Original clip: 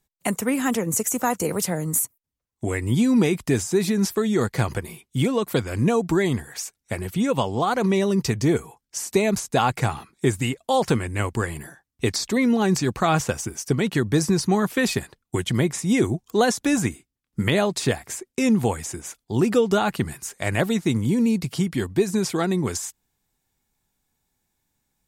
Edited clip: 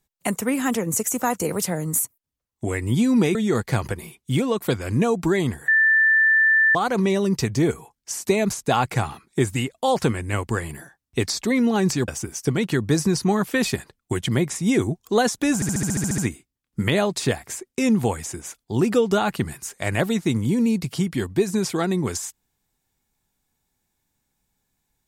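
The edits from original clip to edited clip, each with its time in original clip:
0:03.35–0:04.21: remove
0:06.54–0:07.61: beep over 1,770 Hz −13.5 dBFS
0:12.94–0:13.31: remove
0:16.78: stutter 0.07 s, 10 plays

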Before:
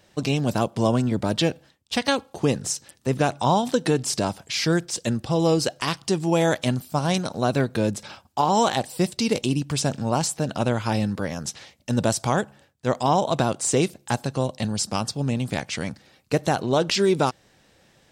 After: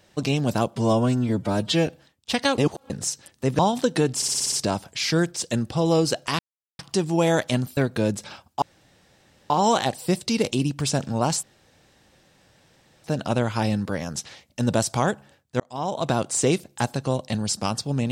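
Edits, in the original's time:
0:00.76–0:01.50: time-stretch 1.5×
0:02.21–0:02.53: reverse
0:03.22–0:03.49: remove
0:04.06: stutter 0.06 s, 7 plays
0:05.93: splice in silence 0.40 s
0:06.91–0:07.56: remove
0:08.41: splice in room tone 0.88 s
0:10.34: splice in room tone 1.61 s
0:12.90–0:13.49: fade in

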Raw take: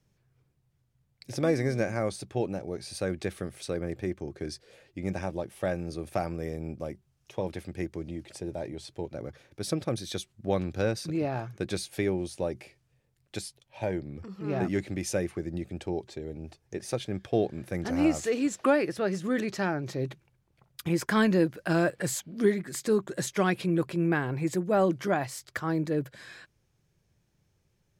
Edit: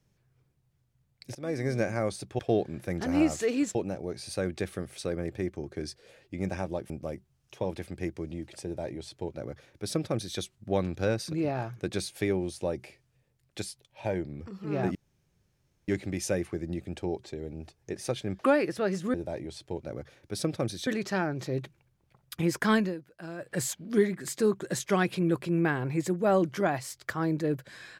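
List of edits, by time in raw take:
0:01.35–0:01.75: fade in, from −21 dB
0:05.54–0:06.67: remove
0:08.42–0:10.15: duplicate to 0:19.34
0:14.72: splice in room tone 0.93 s
0:17.23–0:18.59: move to 0:02.39
0:21.21–0:22.06: duck −15.5 dB, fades 0.21 s

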